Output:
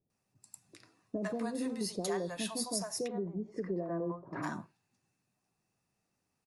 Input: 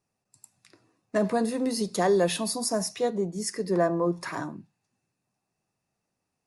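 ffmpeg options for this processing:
-filter_complex "[0:a]asplit=3[s0][s1][s2];[s0]afade=t=out:st=2.96:d=0.02[s3];[s1]lowpass=1100,afade=t=in:st=2.96:d=0.02,afade=t=out:st=4.32:d=0.02[s4];[s2]afade=t=in:st=4.32:d=0.02[s5];[s3][s4][s5]amix=inputs=3:normalize=0,acompressor=threshold=0.0224:ratio=4,acrossover=split=640[s6][s7];[s7]adelay=100[s8];[s6][s8]amix=inputs=2:normalize=0"

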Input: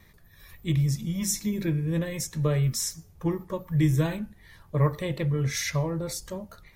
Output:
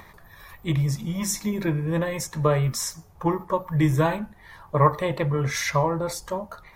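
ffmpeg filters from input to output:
-af "equalizer=f=940:w=0.83:g=14.5,acompressor=mode=upward:threshold=0.00794:ratio=2.5"

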